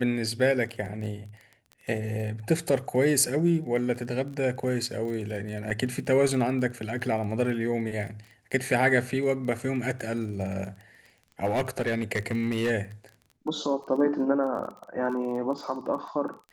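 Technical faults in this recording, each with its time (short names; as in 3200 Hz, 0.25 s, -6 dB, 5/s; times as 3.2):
crackle 20/s -36 dBFS
5.7–5.71 gap 6.3 ms
11.45–12.71 clipped -21.5 dBFS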